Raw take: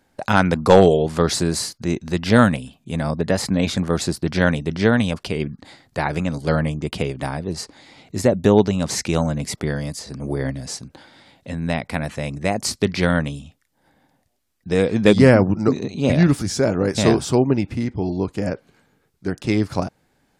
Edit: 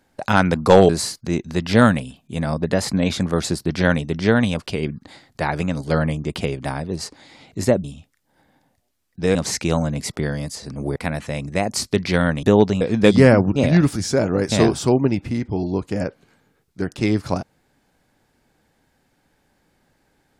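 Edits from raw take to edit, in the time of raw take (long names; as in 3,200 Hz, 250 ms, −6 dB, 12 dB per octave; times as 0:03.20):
0:00.89–0:01.46: remove
0:08.41–0:08.79: swap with 0:13.32–0:14.83
0:10.40–0:11.85: remove
0:15.58–0:16.02: remove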